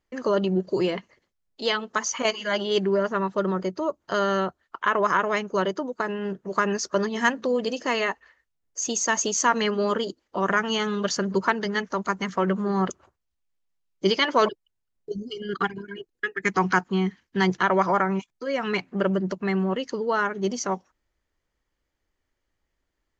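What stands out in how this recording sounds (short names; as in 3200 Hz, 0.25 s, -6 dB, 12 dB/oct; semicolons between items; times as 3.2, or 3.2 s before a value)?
noise floor -79 dBFS; spectral tilt -4.0 dB/oct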